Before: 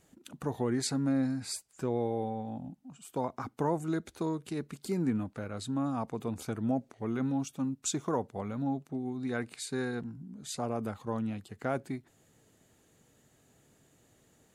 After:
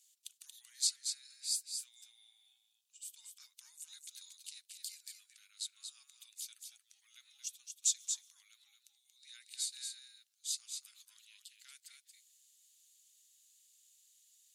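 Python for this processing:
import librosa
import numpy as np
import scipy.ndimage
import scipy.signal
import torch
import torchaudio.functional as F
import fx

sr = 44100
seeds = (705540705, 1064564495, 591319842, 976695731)

p1 = scipy.signal.sosfilt(scipy.signal.cheby2(4, 80, 590.0, 'highpass', fs=sr, output='sos'), x)
p2 = p1 + fx.echo_single(p1, sr, ms=231, db=-6.0, dry=0)
y = p2 * librosa.db_to_amplitude(3.5)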